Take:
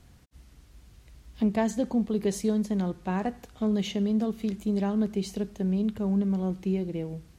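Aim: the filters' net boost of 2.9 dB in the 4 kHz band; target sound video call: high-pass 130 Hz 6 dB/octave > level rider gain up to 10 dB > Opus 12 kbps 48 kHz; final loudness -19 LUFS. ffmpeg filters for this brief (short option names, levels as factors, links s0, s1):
-af "highpass=f=130:p=1,equalizer=f=4000:t=o:g=4,dynaudnorm=m=3.16,volume=3.55" -ar 48000 -c:a libopus -b:a 12k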